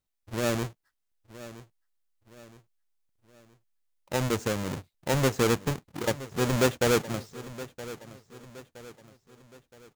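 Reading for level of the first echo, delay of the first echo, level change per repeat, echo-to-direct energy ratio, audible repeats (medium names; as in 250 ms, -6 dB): -16.0 dB, 969 ms, -7.0 dB, -15.0 dB, 3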